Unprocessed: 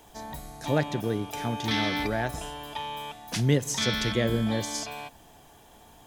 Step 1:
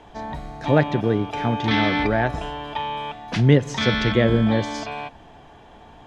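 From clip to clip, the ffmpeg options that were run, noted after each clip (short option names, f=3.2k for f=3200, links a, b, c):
-af "lowpass=2.8k,volume=8dB"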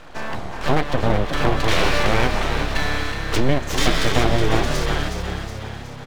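-filter_complex "[0:a]acompressor=threshold=-19dB:ratio=5,aeval=exprs='abs(val(0))':c=same,asplit=2[a][b];[b]asplit=7[c][d][e][f][g][h][i];[c]adelay=368,afreqshift=34,volume=-7dB[j];[d]adelay=736,afreqshift=68,volume=-12.4dB[k];[e]adelay=1104,afreqshift=102,volume=-17.7dB[l];[f]adelay=1472,afreqshift=136,volume=-23.1dB[m];[g]adelay=1840,afreqshift=170,volume=-28.4dB[n];[h]adelay=2208,afreqshift=204,volume=-33.8dB[o];[i]adelay=2576,afreqshift=238,volume=-39.1dB[p];[j][k][l][m][n][o][p]amix=inputs=7:normalize=0[q];[a][q]amix=inputs=2:normalize=0,volume=6.5dB"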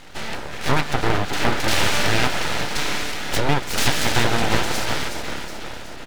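-af "highpass=130,aeval=exprs='abs(val(0))':c=same,bandreject=f=1.1k:w=8.9,volume=4dB"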